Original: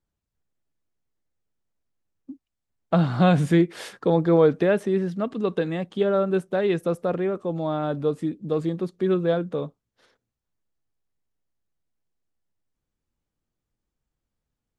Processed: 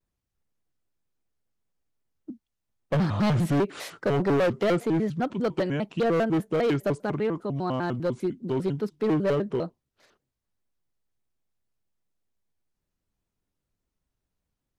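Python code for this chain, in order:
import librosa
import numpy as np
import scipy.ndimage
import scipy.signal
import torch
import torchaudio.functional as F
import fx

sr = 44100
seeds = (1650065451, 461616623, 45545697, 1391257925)

y = fx.peak_eq(x, sr, hz=550.0, db=-10.5, octaves=0.36, at=(7.02, 9.08))
y = np.clip(y, -10.0 ** (-20.0 / 20.0), 10.0 ** (-20.0 / 20.0))
y = fx.vibrato_shape(y, sr, shape='square', rate_hz=5.0, depth_cents=250.0)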